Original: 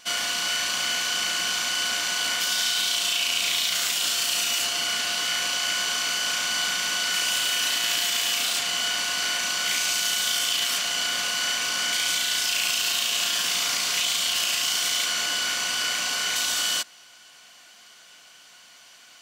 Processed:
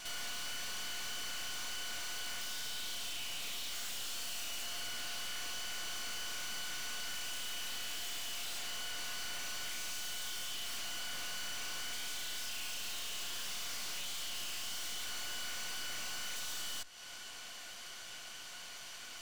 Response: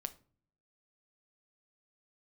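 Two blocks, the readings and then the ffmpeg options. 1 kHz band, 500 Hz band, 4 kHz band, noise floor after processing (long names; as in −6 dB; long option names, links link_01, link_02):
−16.0 dB, −14.5 dB, −17.5 dB, −48 dBFS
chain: -filter_complex "[0:a]acompressor=threshold=-38dB:ratio=4,aeval=exprs='(tanh(200*val(0)+0.7)-tanh(0.7))/200':channel_layout=same,asplit=2[link_01][link_02];[1:a]atrim=start_sample=2205,asetrate=31311,aresample=44100[link_03];[link_02][link_03]afir=irnorm=-1:irlink=0,volume=-8.5dB[link_04];[link_01][link_04]amix=inputs=2:normalize=0,volume=3dB"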